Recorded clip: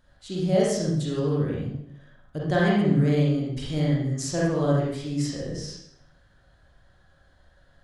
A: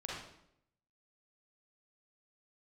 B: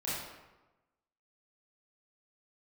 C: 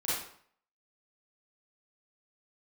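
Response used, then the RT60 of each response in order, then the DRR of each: A; 0.75, 1.1, 0.55 seconds; −5.0, −10.0, −10.5 decibels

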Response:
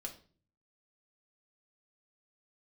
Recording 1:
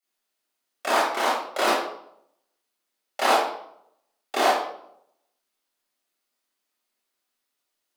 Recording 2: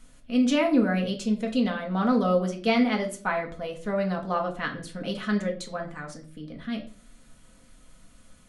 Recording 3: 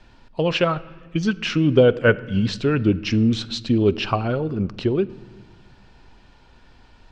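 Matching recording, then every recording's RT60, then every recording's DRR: 2; 0.70 s, non-exponential decay, non-exponential decay; −11.0, 1.0, 15.5 decibels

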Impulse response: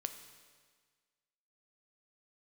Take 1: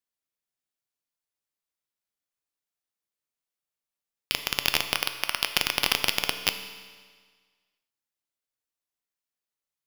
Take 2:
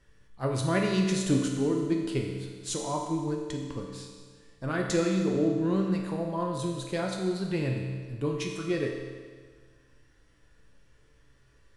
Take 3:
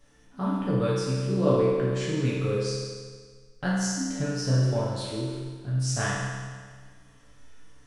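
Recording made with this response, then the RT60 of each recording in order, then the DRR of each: 1; 1.6, 1.6, 1.6 seconds; 7.5, 0.0, −8.0 decibels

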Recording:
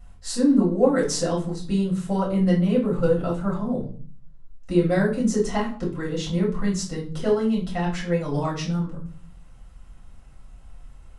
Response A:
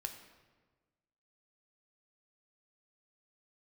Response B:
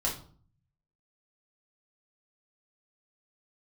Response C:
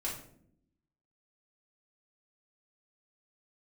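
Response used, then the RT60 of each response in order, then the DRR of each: B; 1.4, 0.50, 0.65 seconds; 5.0, −4.0, −6.0 decibels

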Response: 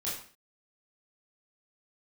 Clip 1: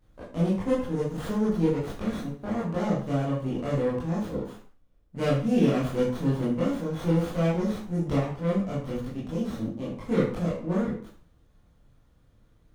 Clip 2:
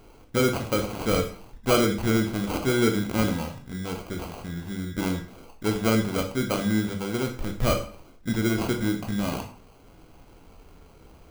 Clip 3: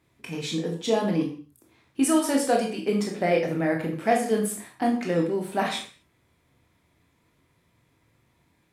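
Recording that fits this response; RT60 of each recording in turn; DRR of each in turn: 1; 0.45, 0.45, 0.45 seconds; −8.0, 4.5, 0.5 decibels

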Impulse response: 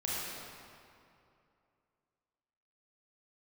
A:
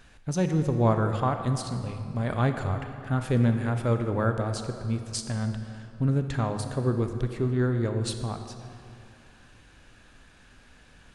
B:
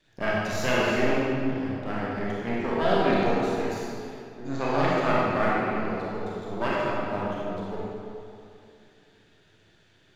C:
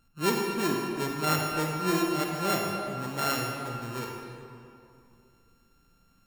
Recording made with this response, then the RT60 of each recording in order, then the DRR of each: B; 2.6, 2.6, 2.6 seconds; 6.5, −7.0, 0.0 decibels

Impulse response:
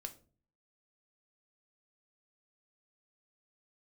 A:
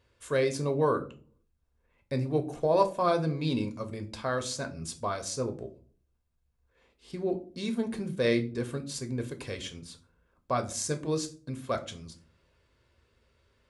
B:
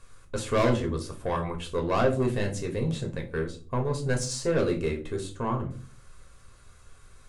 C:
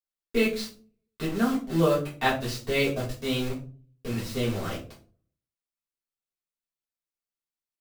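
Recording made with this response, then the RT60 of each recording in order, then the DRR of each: A; 0.40, 0.40, 0.40 seconds; 6.5, 1.5, −7.5 decibels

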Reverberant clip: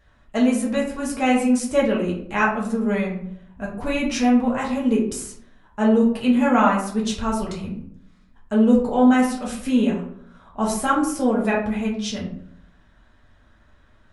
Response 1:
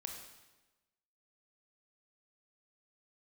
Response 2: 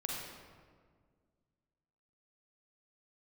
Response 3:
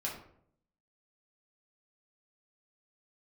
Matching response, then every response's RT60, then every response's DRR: 3; 1.1, 1.8, 0.65 seconds; 2.0, −2.5, −4.5 decibels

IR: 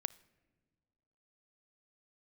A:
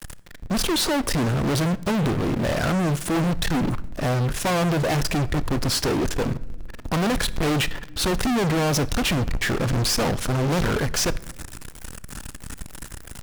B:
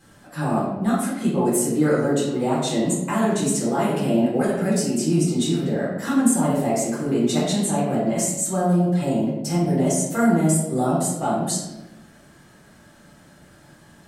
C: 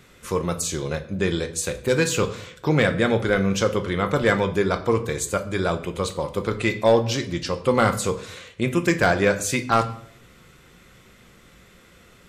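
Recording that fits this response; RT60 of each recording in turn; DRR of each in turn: A; non-exponential decay, 1.1 s, 0.70 s; 18.0, −8.0, 6.5 decibels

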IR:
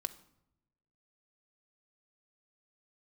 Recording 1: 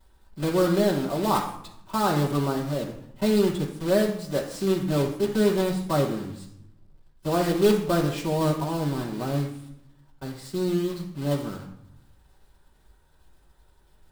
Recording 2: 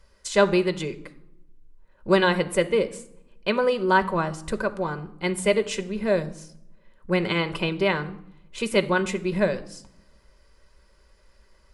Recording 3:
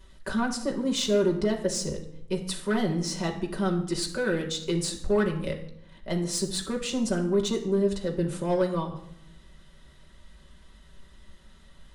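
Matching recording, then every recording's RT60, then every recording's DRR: 2; 0.75, 0.75, 0.75 seconds; −6.5, 9.0, 0.0 decibels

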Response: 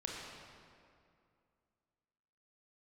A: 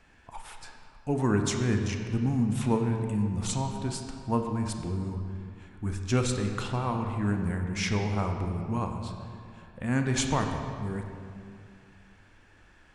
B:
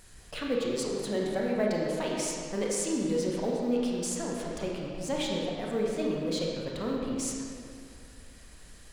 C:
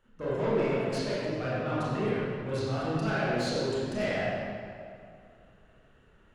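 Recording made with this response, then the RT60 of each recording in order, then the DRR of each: B; 2.4, 2.4, 2.4 seconds; 3.5, −2.5, −10.0 decibels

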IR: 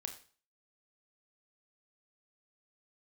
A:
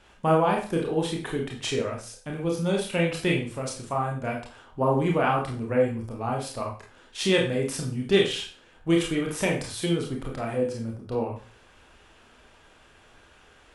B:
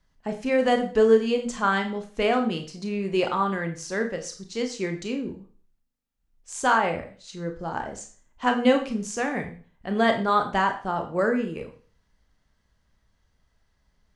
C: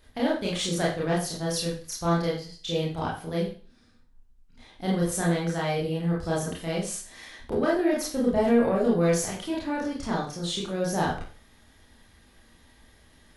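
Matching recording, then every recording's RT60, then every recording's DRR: B; 0.40, 0.40, 0.40 seconds; −1.0, 5.0, −5.5 decibels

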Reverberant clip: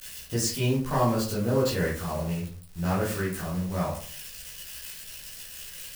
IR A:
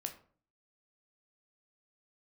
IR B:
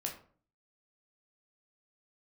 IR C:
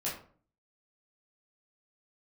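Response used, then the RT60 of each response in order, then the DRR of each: C; 0.45, 0.45, 0.45 seconds; 5.0, 0.5, −7.0 decibels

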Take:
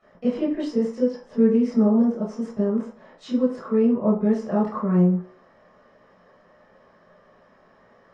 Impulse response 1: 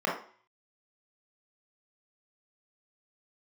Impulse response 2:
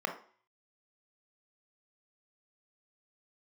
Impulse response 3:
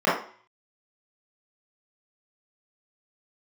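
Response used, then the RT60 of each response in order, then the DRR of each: 3; 0.45, 0.45, 0.45 seconds; −4.0, 4.5, −11.0 decibels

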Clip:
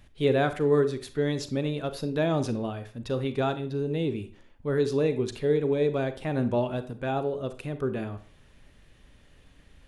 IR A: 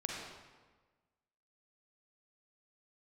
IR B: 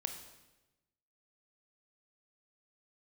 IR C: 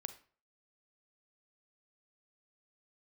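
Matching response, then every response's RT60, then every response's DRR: C; 1.4, 1.0, 0.45 seconds; −2.0, 6.0, 10.5 decibels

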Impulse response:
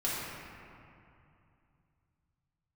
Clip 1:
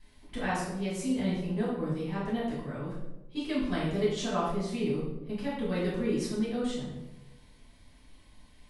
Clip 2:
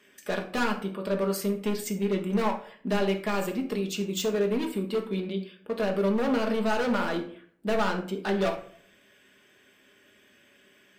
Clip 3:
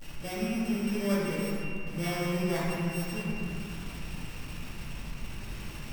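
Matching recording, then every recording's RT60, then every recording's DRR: 3; 1.0, 0.55, 2.6 seconds; −10.0, 3.0, −8.5 decibels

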